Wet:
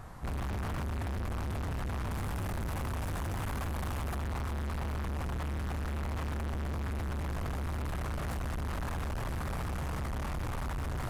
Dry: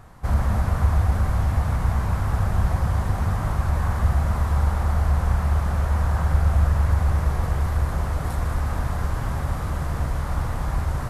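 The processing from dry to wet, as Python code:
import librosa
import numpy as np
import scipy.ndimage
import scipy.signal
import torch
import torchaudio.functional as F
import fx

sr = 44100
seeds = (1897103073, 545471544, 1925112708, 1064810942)

y = fx.high_shelf(x, sr, hz=7700.0, db=7.5, at=(2.11, 4.18))
y = np.clip(y, -10.0 ** (-33.5 / 20.0), 10.0 ** (-33.5 / 20.0))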